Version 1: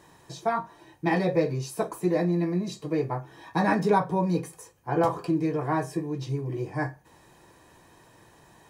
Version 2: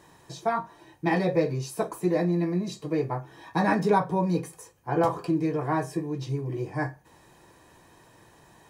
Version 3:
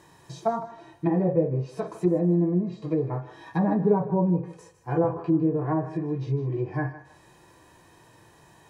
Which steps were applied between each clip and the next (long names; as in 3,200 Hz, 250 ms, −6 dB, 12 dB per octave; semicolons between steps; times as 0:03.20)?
no processing that can be heard
harmonic and percussive parts rebalanced percussive −11 dB; treble cut that deepens with the level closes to 720 Hz, closed at −23.5 dBFS; feedback echo with a high-pass in the loop 156 ms, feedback 31%, high-pass 470 Hz, level −13 dB; level +3.5 dB